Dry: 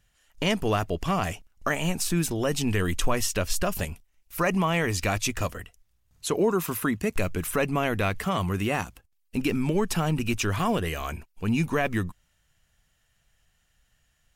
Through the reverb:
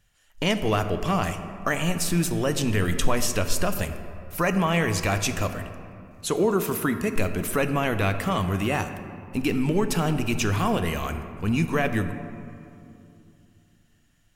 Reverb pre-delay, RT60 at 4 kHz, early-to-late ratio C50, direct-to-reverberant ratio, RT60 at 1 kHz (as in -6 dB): 5 ms, 1.3 s, 9.5 dB, 8.0 dB, 2.5 s